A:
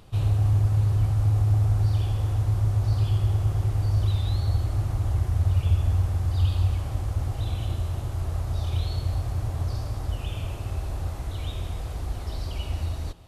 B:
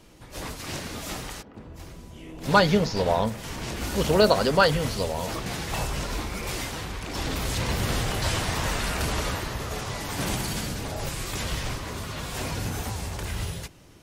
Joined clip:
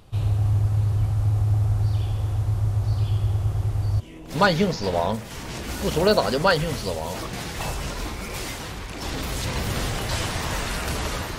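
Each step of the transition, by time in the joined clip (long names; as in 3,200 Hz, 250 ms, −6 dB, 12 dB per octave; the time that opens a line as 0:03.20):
A
0:04.00: continue with B from 0:02.13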